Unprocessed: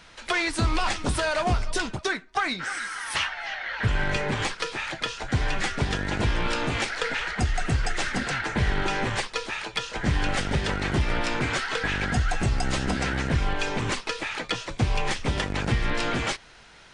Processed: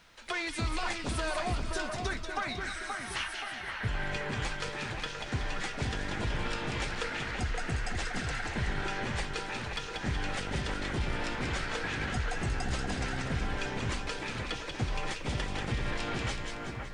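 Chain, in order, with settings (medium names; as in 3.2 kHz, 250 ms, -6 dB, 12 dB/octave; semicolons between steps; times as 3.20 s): two-band feedback delay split 2.2 kHz, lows 526 ms, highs 187 ms, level -4.5 dB; bit crusher 11-bit; trim -9 dB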